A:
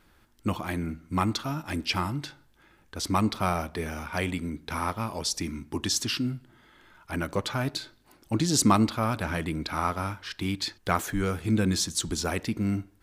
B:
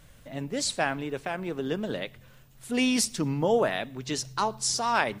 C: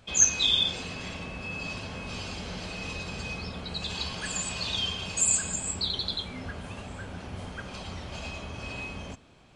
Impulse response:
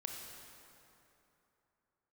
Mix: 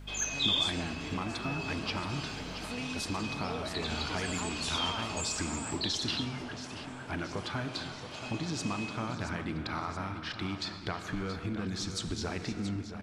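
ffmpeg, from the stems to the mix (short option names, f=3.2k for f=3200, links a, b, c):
-filter_complex "[0:a]lowpass=4.9k,acompressor=threshold=-29dB:ratio=6,volume=-1.5dB,asplit=3[a][b][c];[b]volume=-4.5dB[d];[c]volume=-12dB[e];[1:a]aeval=exprs='val(0)+0.0126*(sin(2*PI*50*n/s)+sin(2*PI*2*50*n/s)/2+sin(2*PI*3*50*n/s)/3+sin(2*PI*4*50*n/s)/4+sin(2*PI*5*50*n/s)/5)':c=same,volume=-7.5dB,asplit=2[f][g];[g]volume=-15.5dB[h];[2:a]highpass=290,acrossover=split=4500[i][j];[j]acompressor=threshold=-37dB:ratio=4:attack=1:release=60[k];[i][k]amix=inputs=2:normalize=0,volume=-3.5dB[l];[a][f]amix=inputs=2:normalize=0,acompressor=threshold=-40dB:ratio=3,volume=0dB[m];[3:a]atrim=start_sample=2205[n];[d][n]afir=irnorm=-1:irlink=0[o];[e][h]amix=inputs=2:normalize=0,aecho=0:1:676|1352|2028|2704|3380|4056|4732|5408|6084|6760:1|0.6|0.36|0.216|0.13|0.0778|0.0467|0.028|0.0168|0.0101[p];[l][m][o][p]amix=inputs=4:normalize=0,bandreject=f=530:w=12,aeval=exprs='0.211*(cos(1*acos(clip(val(0)/0.211,-1,1)))-cos(1*PI/2))+0.00299*(cos(6*acos(clip(val(0)/0.211,-1,1)))-cos(6*PI/2))':c=same"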